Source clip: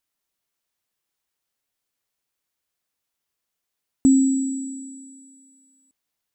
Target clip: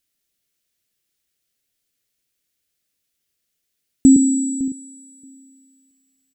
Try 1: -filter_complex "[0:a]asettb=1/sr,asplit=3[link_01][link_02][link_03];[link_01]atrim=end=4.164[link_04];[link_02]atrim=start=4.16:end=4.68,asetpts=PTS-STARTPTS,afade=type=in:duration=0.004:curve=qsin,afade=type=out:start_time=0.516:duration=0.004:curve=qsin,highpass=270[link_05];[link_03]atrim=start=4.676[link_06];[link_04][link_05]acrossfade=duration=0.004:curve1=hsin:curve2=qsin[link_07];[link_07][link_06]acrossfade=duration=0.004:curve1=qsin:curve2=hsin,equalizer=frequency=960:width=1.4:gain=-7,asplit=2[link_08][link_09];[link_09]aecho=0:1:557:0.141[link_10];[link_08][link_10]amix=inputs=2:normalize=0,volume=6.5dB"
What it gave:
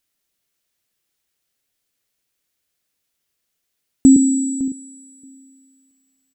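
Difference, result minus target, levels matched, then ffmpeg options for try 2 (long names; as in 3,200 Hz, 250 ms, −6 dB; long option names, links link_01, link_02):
1,000 Hz band +5.5 dB
-filter_complex "[0:a]asettb=1/sr,asplit=3[link_01][link_02][link_03];[link_01]atrim=end=4.164[link_04];[link_02]atrim=start=4.16:end=4.68,asetpts=PTS-STARTPTS,afade=type=in:duration=0.004:curve=qsin,afade=type=out:start_time=0.516:duration=0.004:curve=qsin,highpass=270[link_05];[link_03]atrim=start=4.676[link_06];[link_04][link_05]acrossfade=duration=0.004:curve1=hsin:curve2=qsin[link_07];[link_07][link_06]acrossfade=duration=0.004:curve1=qsin:curve2=hsin,equalizer=frequency=960:width=1.4:gain=-16,asplit=2[link_08][link_09];[link_09]aecho=0:1:557:0.141[link_10];[link_08][link_10]amix=inputs=2:normalize=0,volume=6.5dB"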